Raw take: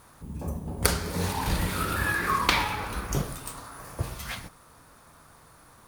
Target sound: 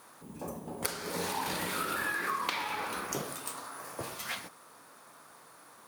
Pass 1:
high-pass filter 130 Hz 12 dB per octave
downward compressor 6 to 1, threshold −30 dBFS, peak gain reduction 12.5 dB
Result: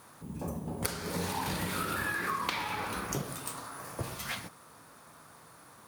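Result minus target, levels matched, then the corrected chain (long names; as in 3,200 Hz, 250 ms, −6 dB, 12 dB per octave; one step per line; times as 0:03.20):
125 Hz band +8.0 dB
high-pass filter 280 Hz 12 dB per octave
downward compressor 6 to 1, threshold −30 dBFS, peak gain reduction 12.5 dB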